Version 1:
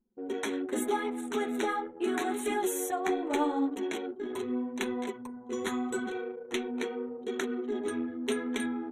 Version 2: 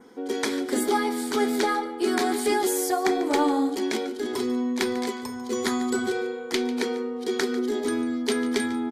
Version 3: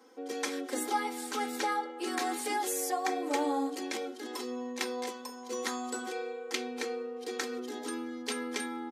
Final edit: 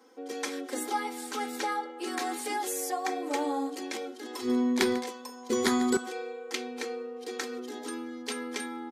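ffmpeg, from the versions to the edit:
-filter_complex "[1:a]asplit=2[s0][s1];[2:a]asplit=3[s2][s3][s4];[s2]atrim=end=4.5[s5];[s0]atrim=start=4.4:end=5.05[s6];[s3]atrim=start=4.95:end=5.502[s7];[s1]atrim=start=5.498:end=5.972[s8];[s4]atrim=start=5.968[s9];[s5][s6]acrossfade=d=0.1:c1=tri:c2=tri[s10];[s10][s7]acrossfade=d=0.1:c1=tri:c2=tri[s11];[s11][s8]acrossfade=d=0.004:c1=hsin:c2=hsin[s12];[s12][s9]acrossfade=d=0.004:c1=hsin:c2=hsin"

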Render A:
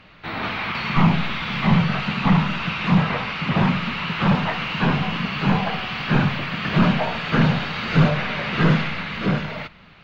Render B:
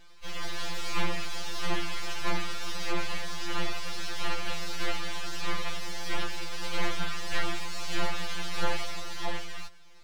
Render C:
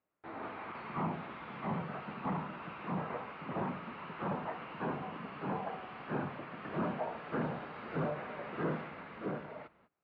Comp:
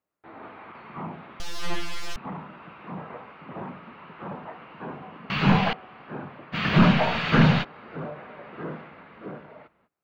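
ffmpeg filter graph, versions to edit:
-filter_complex "[0:a]asplit=2[s0][s1];[2:a]asplit=4[s2][s3][s4][s5];[s2]atrim=end=1.402[s6];[1:a]atrim=start=1.398:end=2.162[s7];[s3]atrim=start=2.158:end=5.302[s8];[s0]atrim=start=5.298:end=5.732[s9];[s4]atrim=start=5.728:end=6.56[s10];[s1]atrim=start=6.52:end=7.65[s11];[s5]atrim=start=7.61[s12];[s6][s7]acrossfade=d=0.004:c1=hsin:c2=hsin[s13];[s13][s8]acrossfade=d=0.004:c1=hsin:c2=hsin[s14];[s14][s9]acrossfade=d=0.004:c1=hsin:c2=hsin[s15];[s15][s10]acrossfade=d=0.004:c1=hsin:c2=hsin[s16];[s16][s11]acrossfade=d=0.04:c1=tri:c2=tri[s17];[s17][s12]acrossfade=d=0.04:c1=tri:c2=tri"

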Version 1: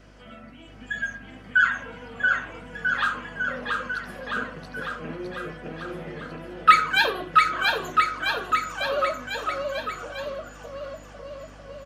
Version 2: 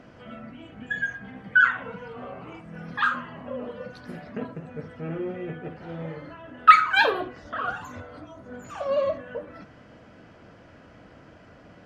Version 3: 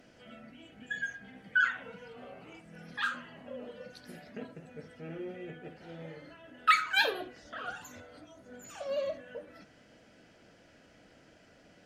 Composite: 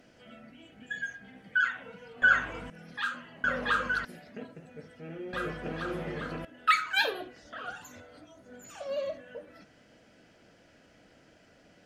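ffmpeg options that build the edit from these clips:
-filter_complex "[0:a]asplit=3[s0][s1][s2];[2:a]asplit=4[s3][s4][s5][s6];[s3]atrim=end=2.222[s7];[s0]atrim=start=2.218:end=2.702[s8];[s4]atrim=start=2.698:end=3.442[s9];[s1]atrim=start=3.438:end=4.052[s10];[s5]atrim=start=4.048:end=5.332[s11];[s2]atrim=start=5.328:end=6.452[s12];[s6]atrim=start=6.448[s13];[s7][s8]acrossfade=d=0.004:c1=hsin:c2=hsin[s14];[s14][s9]acrossfade=d=0.004:c1=hsin:c2=hsin[s15];[s15][s10]acrossfade=d=0.004:c1=hsin:c2=hsin[s16];[s16][s11]acrossfade=d=0.004:c1=hsin:c2=hsin[s17];[s17][s12]acrossfade=d=0.004:c1=hsin:c2=hsin[s18];[s18][s13]acrossfade=d=0.004:c1=hsin:c2=hsin"

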